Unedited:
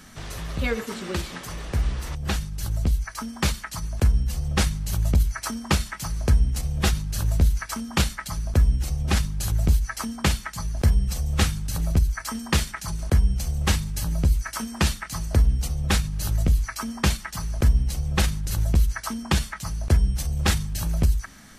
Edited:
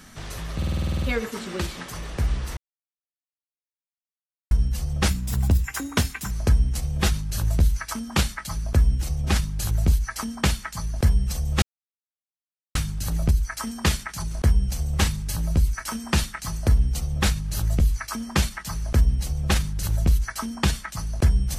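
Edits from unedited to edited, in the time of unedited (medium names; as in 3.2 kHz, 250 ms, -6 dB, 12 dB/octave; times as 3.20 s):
0.57 s: stutter 0.05 s, 10 plays
2.12–4.06 s: mute
4.63–6.12 s: speed 121%
11.43 s: insert silence 1.13 s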